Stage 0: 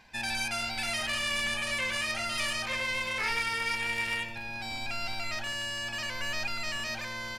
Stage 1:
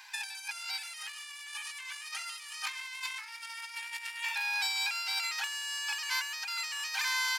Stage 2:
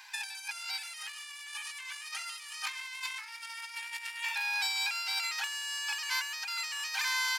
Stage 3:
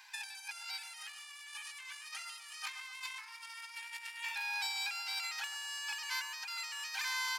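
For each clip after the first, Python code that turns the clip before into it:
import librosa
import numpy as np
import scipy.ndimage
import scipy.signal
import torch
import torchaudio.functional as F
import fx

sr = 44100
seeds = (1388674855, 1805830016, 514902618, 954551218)

y1 = scipy.signal.sosfilt(scipy.signal.cheby1(5, 1.0, 850.0, 'highpass', fs=sr, output='sos'), x)
y1 = fx.high_shelf(y1, sr, hz=4000.0, db=10.0)
y1 = fx.over_compress(y1, sr, threshold_db=-36.0, ratio=-0.5)
y2 = y1
y3 = fx.echo_bbd(y2, sr, ms=125, stages=1024, feedback_pct=64, wet_db=-9.0)
y3 = y3 * 10.0 ** (-5.5 / 20.0)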